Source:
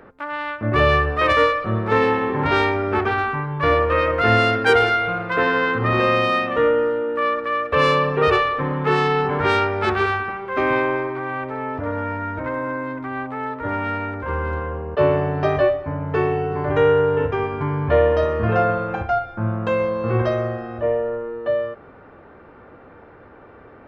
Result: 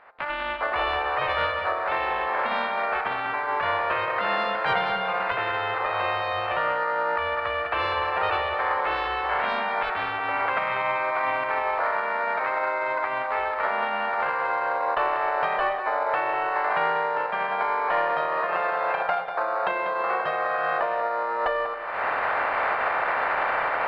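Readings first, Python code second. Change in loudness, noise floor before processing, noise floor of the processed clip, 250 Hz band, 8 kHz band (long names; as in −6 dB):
−5.0 dB, −45 dBFS, −29 dBFS, −17.5 dB, can't be measured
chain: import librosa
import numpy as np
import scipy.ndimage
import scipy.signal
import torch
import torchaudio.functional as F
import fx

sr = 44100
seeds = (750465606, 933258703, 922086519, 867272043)

p1 = fx.spec_clip(x, sr, under_db=19)
p2 = fx.recorder_agc(p1, sr, target_db=-8.5, rise_db_per_s=56.0, max_gain_db=30)
p3 = scipy.signal.sosfilt(scipy.signal.butter(4, 600.0, 'highpass', fs=sr, output='sos'), p2)
p4 = fx.sample_hold(p3, sr, seeds[0], rate_hz=3000.0, jitter_pct=0)
p5 = p3 + (p4 * librosa.db_to_amplitude(-10.5))
p6 = fx.air_absorb(p5, sr, metres=440.0)
p7 = p6 + fx.echo_single(p6, sr, ms=193, db=-9.5, dry=0)
y = p7 * librosa.db_to_amplitude(-4.5)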